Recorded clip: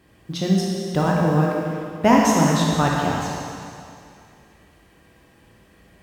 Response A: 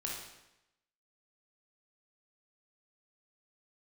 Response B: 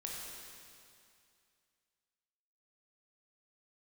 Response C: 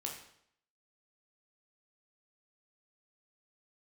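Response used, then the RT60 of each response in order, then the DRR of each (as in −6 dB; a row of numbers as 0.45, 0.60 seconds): B; 0.90, 2.4, 0.70 seconds; −2.5, −3.0, −0.5 decibels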